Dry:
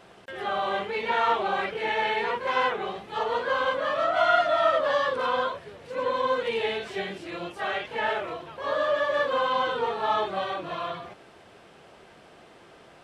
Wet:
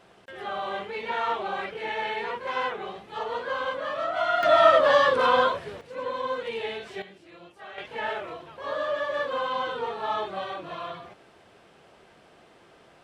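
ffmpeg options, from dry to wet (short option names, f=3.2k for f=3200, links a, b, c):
-af "asetnsamples=n=441:p=0,asendcmd='4.43 volume volume 5.5dB;5.81 volume volume -4.5dB;7.02 volume volume -13.5dB;7.78 volume volume -3.5dB',volume=-4dB"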